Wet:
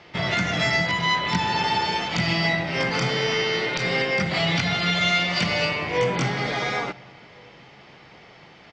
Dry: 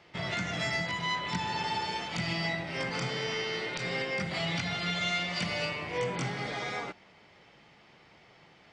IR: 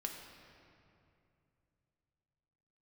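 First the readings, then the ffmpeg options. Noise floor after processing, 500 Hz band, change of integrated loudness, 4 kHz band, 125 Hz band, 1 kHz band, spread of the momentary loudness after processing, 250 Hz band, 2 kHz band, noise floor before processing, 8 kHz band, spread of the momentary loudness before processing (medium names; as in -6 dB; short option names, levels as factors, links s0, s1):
-49 dBFS, +10.0 dB, +9.5 dB, +9.5 dB, +9.5 dB, +9.5 dB, 4 LU, +9.5 dB, +9.5 dB, -59 dBFS, +7.5 dB, 4 LU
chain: -filter_complex "[0:a]lowpass=f=6800:w=0.5412,lowpass=f=6800:w=1.3066,acontrast=81,asplit=2[s0][s1];[s1]adelay=1399,volume=0.0355,highshelf=f=4000:g=-31.5[s2];[s0][s2]amix=inputs=2:normalize=0,asplit=2[s3][s4];[1:a]atrim=start_sample=2205[s5];[s4][s5]afir=irnorm=-1:irlink=0,volume=0.168[s6];[s3][s6]amix=inputs=2:normalize=0,volume=1.19"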